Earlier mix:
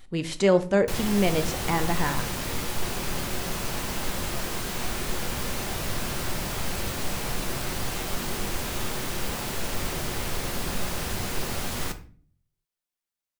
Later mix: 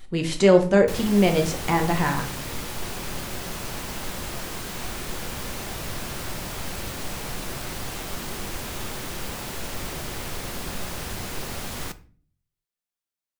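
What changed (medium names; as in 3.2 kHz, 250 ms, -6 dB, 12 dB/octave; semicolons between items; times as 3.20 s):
speech: send +8.5 dB; background: send -6.5 dB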